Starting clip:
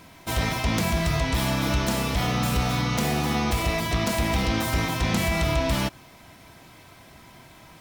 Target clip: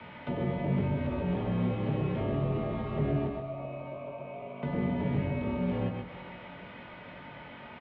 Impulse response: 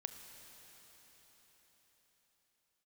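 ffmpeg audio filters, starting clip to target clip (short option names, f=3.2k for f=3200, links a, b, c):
-filter_complex "[0:a]acrossover=split=170|840|2400[a][b][c][d];[a]acompressor=threshold=-36dB:ratio=4[e];[b]acompressor=threshold=-30dB:ratio=4[f];[c]acompressor=threshold=-43dB:ratio=4[g];[d]acompressor=threshold=-45dB:ratio=4[h];[e][f][g][h]amix=inputs=4:normalize=0,asettb=1/sr,asplit=3[i][j][k];[i]atrim=end=3.274[l];[j]atrim=start=3.27:end=4.63,asetpts=PTS-STARTPTS,afade=t=in:d=0.004:c=qsin,afade=t=out:st=1.356:d=0.004:c=qsin,asplit=3[m][n][o];[m]bandpass=f=730:t=q:w=8,volume=0dB[p];[n]bandpass=f=1.09k:t=q:w=8,volume=-6dB[q];[o]bandpass=f=2.44k:t=q:w=8,volume=-9dB[r];[p][q][r]amix=inputs=3:normalize=0[s];[k]atrim=start=4.626[t];[l][s]acrossfade=d=0.004:c1=hsin:c2=qsin[u];[u][t]acrossfade=d=0.004:c1=qsin:c2=hsin,asplit=2[v][w];[w]adelay=22,volume=-5.5dB[x];[v][x]amix=inputs=2:normalize=0,asplit=2[y][z];[1:a]atrim=start_sample=2205,asetrate=70560,aresample=44100,adelay=127[aa];[z][aa]afir=irnorm=-1:irlink=0,volume=1dB[ab];[y][ab]amix=inputs=2:normalize=0,highpass=f=200:t=q:w=0.5412,highpass=f=200:t=q:w=1.307,lowpass=f=3.2k:t=q:w=0.5176,lowpass=f=3.2k:t=q:w=0.7071,lowpass=f=3.2k:t=q:w=1.932,afreqshift=-84,acrossover=split=550[ac][ad];[ad]acompressor=threshold=-47dB:ratio=6[ae];[ac][ae]amix=inputs=2:normalize=0,volume=3dB"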